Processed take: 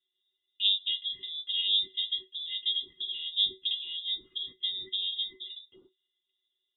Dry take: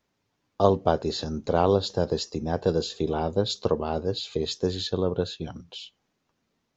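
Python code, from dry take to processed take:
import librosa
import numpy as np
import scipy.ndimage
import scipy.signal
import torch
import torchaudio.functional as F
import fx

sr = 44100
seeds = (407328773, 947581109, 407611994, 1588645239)

y = fx.octave_resonator(x, sr, note='G#', decay_s=0.15)
y = fx.freq_invert(y, sr, carrier_hz=3700)
y = F.gain(torch.from_numpy(y), 3.0).numpy()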